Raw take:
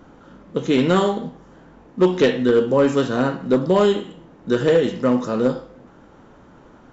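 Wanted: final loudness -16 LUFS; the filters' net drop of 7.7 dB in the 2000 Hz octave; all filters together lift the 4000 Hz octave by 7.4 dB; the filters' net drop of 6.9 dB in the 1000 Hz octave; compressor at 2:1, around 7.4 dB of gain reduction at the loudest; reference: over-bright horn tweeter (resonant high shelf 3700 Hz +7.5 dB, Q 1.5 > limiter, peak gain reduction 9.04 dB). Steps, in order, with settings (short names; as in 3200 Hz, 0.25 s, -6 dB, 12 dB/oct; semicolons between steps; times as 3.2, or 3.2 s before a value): bell 1000 Hz -6.5 dB; bell 2000 Hz -8.5 dB; bell 4000 Hz +9 dB; compressor 2:1, threshold -26 dBFS; resonant high shelf 3700 Hz +7.5 dB, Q 1.5; gain +13 dB; limiter -5.5 dBFS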